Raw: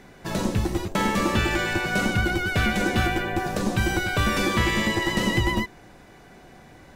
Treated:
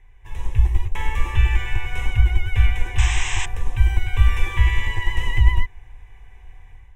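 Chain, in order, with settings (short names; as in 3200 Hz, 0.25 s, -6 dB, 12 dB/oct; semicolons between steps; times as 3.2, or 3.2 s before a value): painted sound noise, 2.98–3.46, 600–8400 Hz -19 dBFS; passive tone stack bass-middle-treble 10-0-10; AGC gain up to 8 dB; RIAA curve playback; fixed phaser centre 920 Hz, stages 8; gain -2 dB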